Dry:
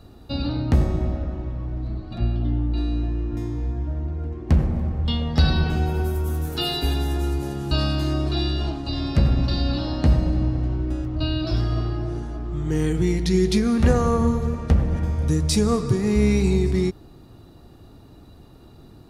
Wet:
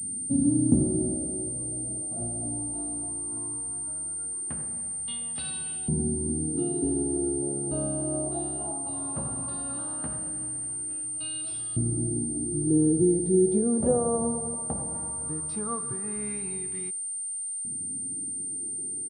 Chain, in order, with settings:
graphic EQ with 10 bands 125 Hz +9 dB, 250 Hz +6 dB, 2,000 Hz −11 dB
auto-filter band-pass saw up 0.17 Hz 210–3,300 Hz
far-end echo of a speakerphone 100 ms, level −24 dB
switching amplifier with a slow clock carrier 8,900 Hz

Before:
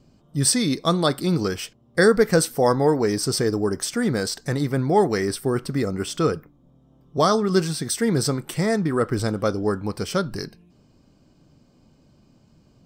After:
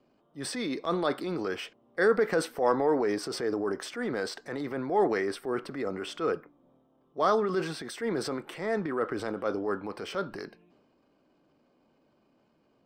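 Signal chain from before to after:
three-way crossover with the lows and the highs turned down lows −21 dB, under 270 Hz, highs −18 dB, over 3,200 Hz
transient designer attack −6 dB, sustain +5 dB
level −4 dB

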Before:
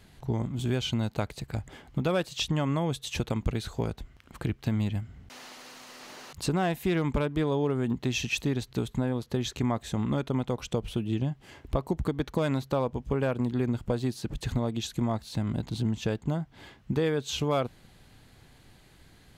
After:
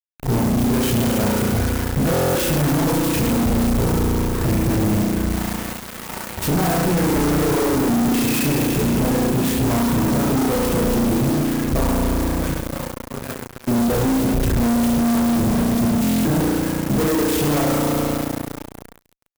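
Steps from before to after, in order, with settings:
reverse bouncing-ball delay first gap 30 ms, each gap 1.25×, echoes 5
in parallel at −7 dB: soft clipping −20.5 dBFS, distortion −16 dB
0:11.91–0:13.68: on the sum: guitar amp tone stack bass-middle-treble 5-5-5
spring reverb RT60 2.8 s, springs 34 ms, chirp 55 ms, DRR −5 dB
reverb reduction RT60 0.75 s
fuzz pedal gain 36 dB, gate −37 dBFS
low-shelf EQ 480 Hz +4.5 dB
buffer that repeats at 0:02.12/0:16.02, samples 1,024, times 9
converter with an unsteady clock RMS 0.072 ms
level −6.5 dB

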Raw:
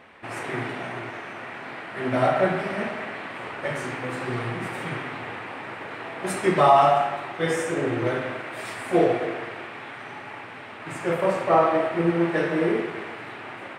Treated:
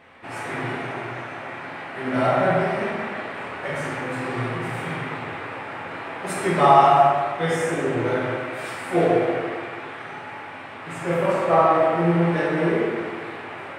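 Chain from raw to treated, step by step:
dense smooth reverb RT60 1.5 s, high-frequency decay 0.5×, DRR −3 dB
level −2.5 dB

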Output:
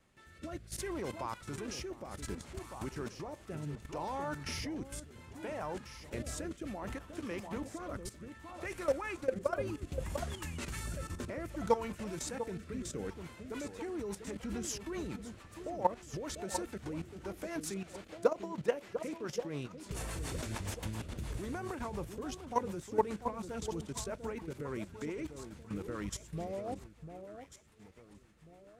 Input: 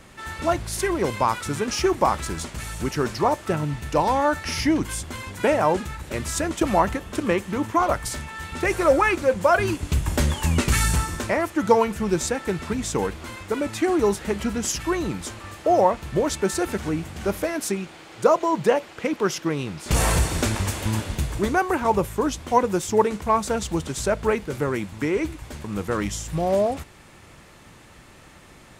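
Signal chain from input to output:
output level in coarse steps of 15 dB
delay that swaps between a low-pass and a high-pass 696 ms, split 1,200 Hz, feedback 56%, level −8 dB
rotating-speaker cabinet horn 0.65 Hz, later 7 Hz, at 0:13.07
level −7.5 dB

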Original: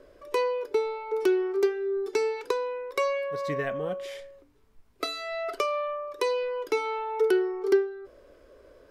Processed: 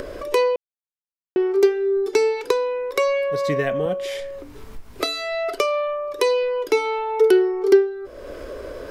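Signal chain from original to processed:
0:00.56–0:01.36: silence
upward compression, threshold −30 dBFS
dynamic equaliser 1,300 Hz, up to −5 dB, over −45 dBFS, Q 1.4
0:02.97–0:03.86: multiband upward and downward compressor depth 40%
level +8.5 dB

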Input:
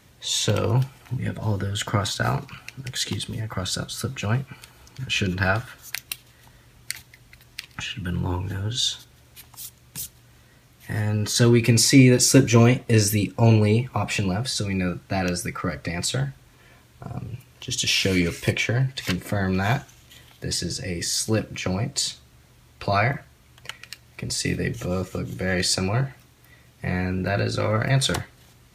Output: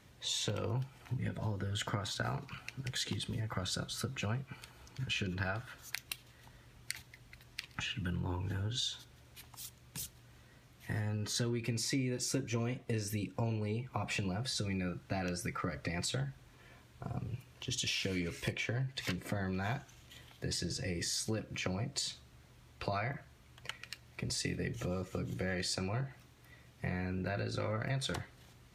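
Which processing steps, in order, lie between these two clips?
high-shelf EQ 7,300 Hz −6.5 dB
downward compressor 6 to 1, threshold −27 dBFS, peak gain reduction 17 dB
level −6 dB

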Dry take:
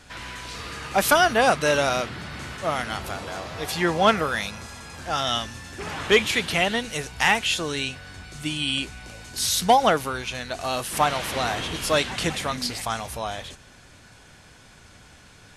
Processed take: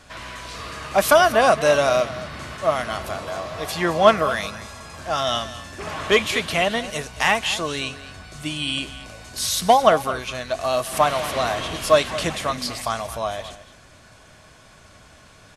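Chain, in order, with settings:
hollow resonant body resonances 630/1,100 Hz, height 10 dB, ringing for 40 ms
on a send: single-tap delay 220 ms −15 dB

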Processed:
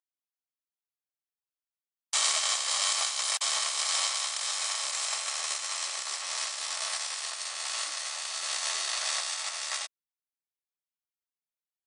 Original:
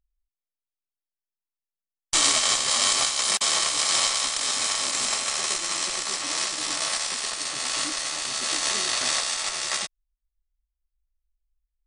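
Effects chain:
high-pass filter 590 Hz 24 dB per octave
level −6 dB

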